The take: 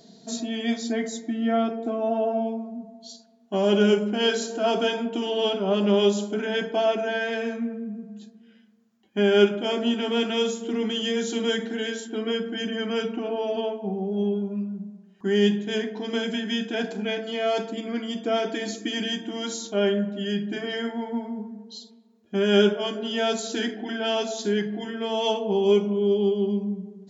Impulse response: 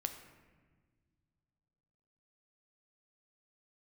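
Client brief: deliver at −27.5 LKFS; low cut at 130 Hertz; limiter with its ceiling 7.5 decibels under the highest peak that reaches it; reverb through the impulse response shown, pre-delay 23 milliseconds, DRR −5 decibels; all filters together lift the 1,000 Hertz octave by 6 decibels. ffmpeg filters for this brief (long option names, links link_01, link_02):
-filter_complex "[0:a]highpass=130,equalizer=frequency=1000:width_type=o:gain=9,alimiter=limit=-13dB:level=0:latency=1,asplit=2[link_01][link_02];[1:a]atrim=start_sample=2205,adelay=23[link_03];[link_02][link_03]afir=irnorm=-1:irlink=0,volume=5.5dB[link_04];[link_01][link_04]amix=inputs=2:normalize=0,volume=-8.5dB"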